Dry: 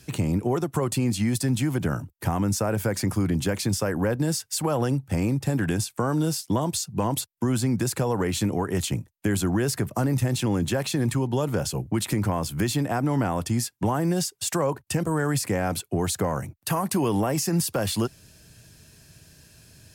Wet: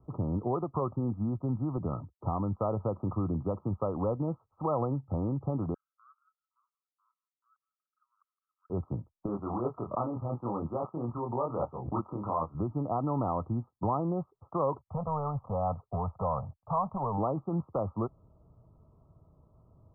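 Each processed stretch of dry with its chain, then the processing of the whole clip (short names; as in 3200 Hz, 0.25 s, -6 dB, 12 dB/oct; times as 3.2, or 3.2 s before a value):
1.77–2.56 HPF 48 Hz + air absorption 380 m
5.74–8.7 steep high-pass 1500 Hz 72 dB/oct + auto swell 0.602 s + echo 0.166 s -23.5 dB
9.26–12.55 tilt +3 dB/oct + doubler 25 ms -2.5 dB + backwards sustainer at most 67 dB/s
14.78–17.18 sample leveller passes 1 + fixed phaser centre 800 Hz, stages 4
whole clip: Chebyshev low-pass 1300 Hz, order 10; bell 200 Hz -8 dB 2.9 oct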